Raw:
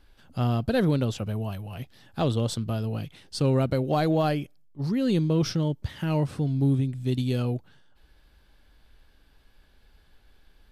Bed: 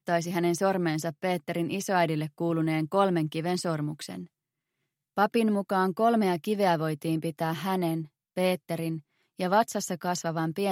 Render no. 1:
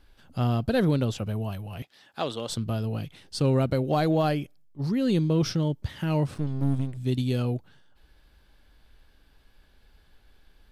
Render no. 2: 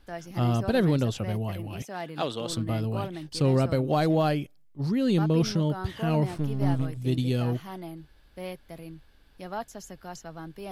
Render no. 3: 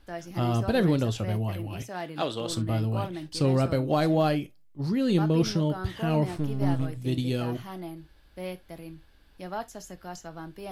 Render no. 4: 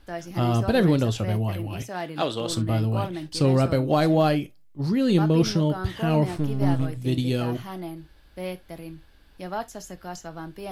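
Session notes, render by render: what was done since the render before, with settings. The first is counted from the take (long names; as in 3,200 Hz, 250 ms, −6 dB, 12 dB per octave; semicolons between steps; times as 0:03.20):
0:01.82–0:02.50: meter weighting curve A; 0:06.34–0:06.97: gain on one half-wave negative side −12 dB
mix in bed −11.5 dB
reverb whose tail is shaped and stops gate 90 ms falling, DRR 10.5 dB
level +3.5 dB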